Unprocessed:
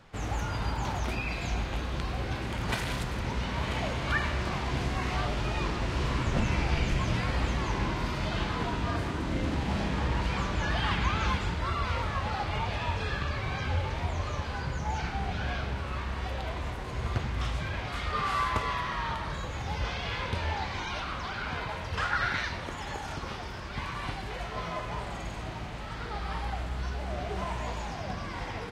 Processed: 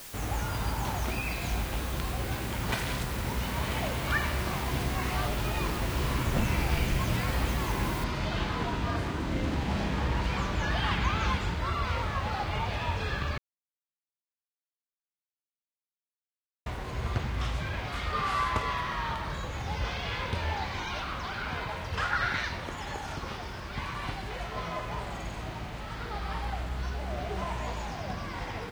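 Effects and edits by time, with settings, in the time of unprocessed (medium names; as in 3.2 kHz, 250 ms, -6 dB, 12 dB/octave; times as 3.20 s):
8.04 s: noise floor step -45 dB -66 dB
13.38–16.66 s: mute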